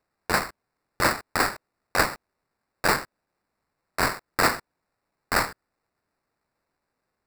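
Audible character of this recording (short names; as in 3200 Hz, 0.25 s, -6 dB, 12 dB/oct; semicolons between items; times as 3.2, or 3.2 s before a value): aliases and images of a low sample rate 3200 Hz, jitter 0%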